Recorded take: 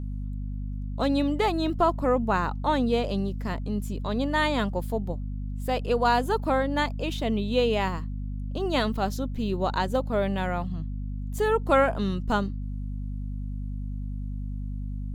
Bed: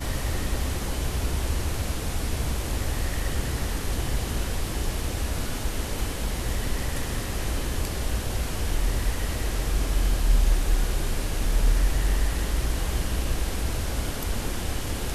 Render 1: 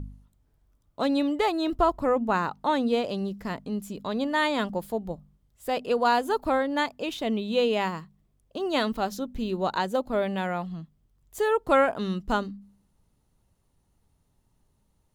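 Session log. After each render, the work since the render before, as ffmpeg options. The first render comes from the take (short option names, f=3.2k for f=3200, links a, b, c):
-af "bandreject=f=50:t=h:w=4,bandreject=f=100:t=h:w=4,bandreject=f=150:t=h:w=4,bandreject=f=200:t=h:w=4,bandreject=f=250:t=h:w=4"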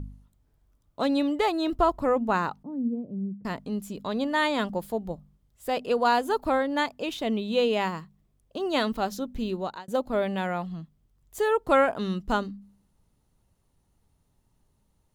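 -filter_complex "[0:a]asettb=1/sr,asplit=3[a][b][c];[a]atrim=end=2.634[d];[b]atrim=start=2.63:end=3.45,asetpts=PTS-STARTPTS,afade=t=in:d=0.004:c=qsin,afade=t=out:st=0.816:d=0.004:c=qsin,asuperpass=centerf=180:order=4:qfactor=1.1[e];[c]atrim=start=3.446[f];[d][e]acrossfade=d=0.004:c1=hsin:c2=qsin[g];[g][f]acrossfade=d=0.004:c1=qsin:c2=hsin,asplit=2[h][i];[h]atrim=end=9.88,asetpts=PTS-STARTPTS,afade=t=out:st=9.48:d=0.4[j];[i]atrim=start=9.88,asetpts=PTS-STARTPTS,afade=t=in:d=0.004:c=hsin[k];[j][k]concat=n=2:v=0:a=1"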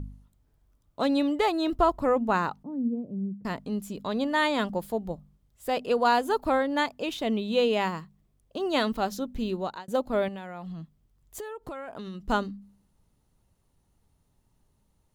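-filter_complex "[0:a]asettb=1/sr,asplit=3[a][b][c];[a]atrim=end=10.284[d];[b]atrim=start=10.28:end=12.23,asetpts=PTS-STARTPTS,afade=t=in:d=0.004:c=qsin,afade=t=out:st=1.946:d=0.004:c=qsin,acompressor=threshold=-34dB:ratio=12:attack=3.2:release=140:knee=1:detection=peak[e];[c]atrim=start=12.226[f];[d][e]acrossfade=d=0.004:c1=hsin:c2=qsin[g];[g][f]acrossfade=d=0.004:c1=qsin:c2=hsin"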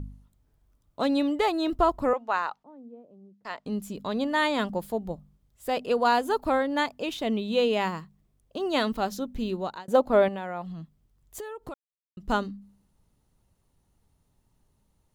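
-filter_complex "[0:a]asettb=1/sr,asplit=3[a][b][c];[a]atrim=end=2.134[d];[b]atrim=start=2.13:end=3.66,asetpts=PTS-STARTPTS,afade=t=in:d=0.004:c=qsin,afade=t=out:st=1.526:d=0.004:c=qsin,acrossover=split=530 6800:gain=0.0708 1 0.158[e][f][g];[e][f][g]amix=inputs=3:normalize=0[h];[c]atrim=start=3.656[i];[d][h]acrossfade=d=0.004:c1=hsin:c2=qsin[j];[j][i]acrossfade=d=0.004:c1=qsin:c2=hsin,asettb=1/sr,asplit=3[k][l][m];[k]atrim=end=9.854[n];[l]atrim=start=9.85:end=10.62,asetpts=PTS-STARTPTS,afade=t=in:d=0.004:c=qsin,afade=t=out:st=0.766:d=0.004:c=qsin,equalizer=f=750:t=o:w=3:g=7[o];[m]atrim=start=10.616[p];[n][o]acrossfade=d=0.004:c1=hsin:c2=qsin[q];[q][p]acrossfade=d=0.004:c1=qsin:c2=hsin,asplit=3[r][s][t];[r]atrim=end=11.74,asetpts=PTS-STARTPTS,afade=t=out:st=11.736:d=0.004:c=hsin[u];[s]atrim=start=11.74:end=12.17,asetpts=PTS-STARTPTS,volume=0[v];[t]atrim=start=12.17,asetpts=PTS-STARTPTS,afade=t=in:d=0.004:c=hsin[w];[u][v][w]concat=n=3:v=0:a=1"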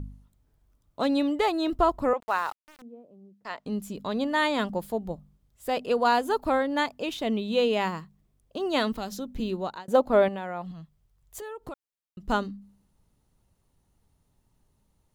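-filter_complex "[0:a]asettb=1/sr,asplit=3[a][b][c];[a]atrim=end=2.204[d];[b]atrim=start=2.2:end=2.82,asetpts=PTS-STARTPTS,afade=t=in:d=0.004:c=qsin,afade=t=out:st=0.616:d=0.004:c=qsin,aeval=exprs='val(0)*gte(abs(val(0)),0.00841)':c=same[e];[c]atrim=start=2.816[f];[d][e]acrossfade=d=0.004:c1=hsin:c2=qsin[g];[g][f]acrossfade=d=0.004:c1=qsin:c2=hsin,asettb=1/sr,asplit=3[h][i][j];[h]atrim=end=8.974[k];[i]atrim=start=8.97:end=9.4,asetpts=PTS-STARTPTS,afade=t=in:d=0.004:c=qsin,afade=t=out:st=0.426:d=0.004:c=qsin,acrossover=split=190|3000[l][m][n];[m]acompressor=threshold=-32dB:ratio=3:attack=3.2:release=140:knee=2.83:detection=peak[o];[l][o][n]amix=inputs=3:normalize=0[p];[j]atrim=start=9.396[q];[k][p]acrossfade=d=0.004:c1=hsin:c2=qsin[r];[r][q]acrossfade=d=0.004:c1=qsin:c2=hsin,asettb=1/sr,asplit=3[s][t][u];[s]atrim=end=10.714[v];[t]atrim=start=10.71:end=11.42,asetpts=PTS-STARTPTS,afade=t=in:d=0.004:c=qsin,afade=t=out:st=0.706:d=0.004:c=qsin,equalizer=f=260:w=1.9:g=-13[w];[u]atrim=start=11.416[x];[v][w]acrossfade=d=0.004:c1=hsin:c2=qsin[y];[y][x]acrossfade=d=0.004:c1=qsin:c2=hsin"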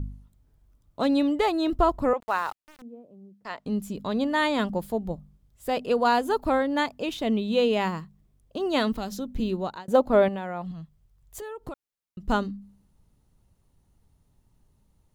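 -af "lowshelf=f=250:g=5.5"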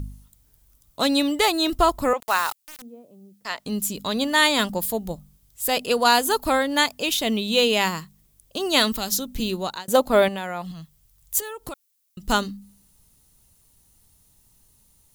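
-af "crystalizer=i=8:c=0"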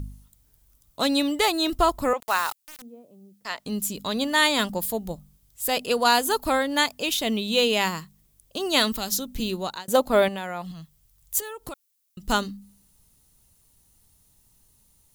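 -af "volume=-2dB"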